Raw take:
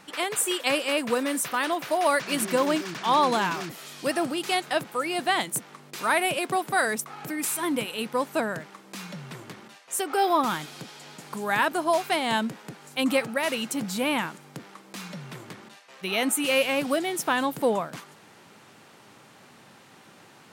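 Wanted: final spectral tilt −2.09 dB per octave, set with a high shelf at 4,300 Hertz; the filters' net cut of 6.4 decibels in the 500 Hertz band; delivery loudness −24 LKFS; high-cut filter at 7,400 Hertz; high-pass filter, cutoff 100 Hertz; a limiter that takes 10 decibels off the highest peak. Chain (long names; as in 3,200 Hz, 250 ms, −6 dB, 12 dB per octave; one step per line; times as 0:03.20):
high-pass filter 100 Hz
low-pass filter 7,400 Hz
parametric band 500 Hz −8.5 dB
high-shelf EQ 4,300 Hz +8 dB
level +6 dB
brickwall limiter −13.5 dBFS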